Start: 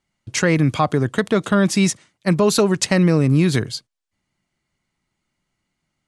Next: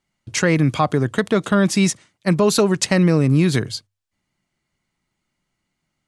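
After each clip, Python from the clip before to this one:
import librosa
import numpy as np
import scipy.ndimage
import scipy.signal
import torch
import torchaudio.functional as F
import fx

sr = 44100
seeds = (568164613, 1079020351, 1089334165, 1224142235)

y = fx.hum_notches(x, sr, base_hz=50, count=2)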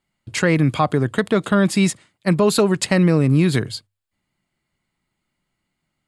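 y = fx.peak_eq(x, sr, hz=5900.0, db=-11.0, octaves=0.25)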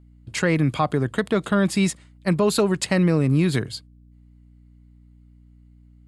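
y = fx.add_hum(x, sr, base_hz=60, snr_db=27)
y = y * 10.0 ** (-3.5 / 20.0)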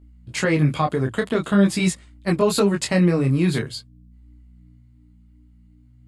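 y = fx.detune_double(x, sr, cents=16)
y = y * 10.0 ** (4.5 / 20.0)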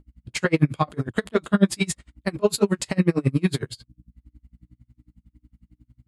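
y = x * 10.0 ** (-33 * (0.5 - 0.5 * np.cos(2.0 * np.pi * 11.0 * np.arange(len(x)) / sr)) / 20.0)
y = y * 10.0 ** (3.5 / 20.0)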